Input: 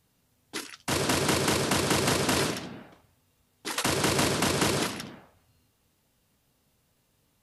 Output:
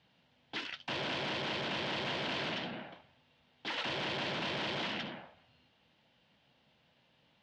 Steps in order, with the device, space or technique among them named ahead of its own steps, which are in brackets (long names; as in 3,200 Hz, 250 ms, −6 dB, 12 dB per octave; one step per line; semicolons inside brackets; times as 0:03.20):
guitar amplifier (tube saturation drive 39 dB, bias 0.5; bass and treble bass −5 dB, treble −5 dB; loudspeaker in its box 99–4,300 Hz, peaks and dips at 100 Hz −8 dB, 280 Hz −5 dB, 420 Hz −9 dB, 1,200 Hz −7 dB, 3,100 Hz +5 dB)
level +7.5 dB